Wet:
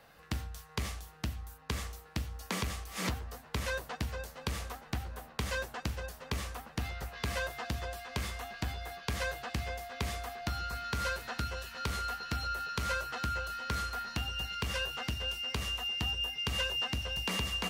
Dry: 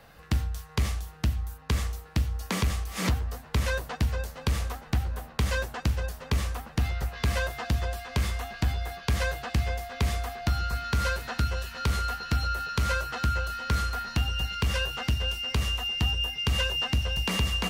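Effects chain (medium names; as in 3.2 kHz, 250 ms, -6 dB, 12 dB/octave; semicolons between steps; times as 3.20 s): bass shelf 150 Hz -8.5 dB; trim -4.5 dB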